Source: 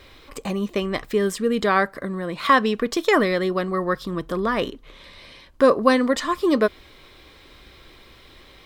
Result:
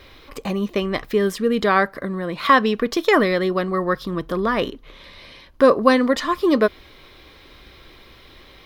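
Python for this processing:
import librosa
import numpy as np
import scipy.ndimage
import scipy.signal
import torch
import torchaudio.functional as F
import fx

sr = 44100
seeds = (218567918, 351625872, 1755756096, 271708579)

y = fx.peak_eq(x, sr, hz=7900.0, db=-8.5, octaves=0.42)
y = y * 10.0 ** (2.0 / 20.0)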